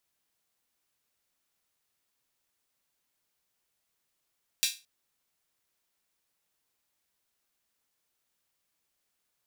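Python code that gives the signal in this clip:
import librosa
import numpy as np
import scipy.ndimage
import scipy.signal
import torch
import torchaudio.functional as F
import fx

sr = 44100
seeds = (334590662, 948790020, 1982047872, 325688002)

y = fx.drum_hat_open(sr, length_s=0.22, from_hz=3200.0, decay_s=0.28)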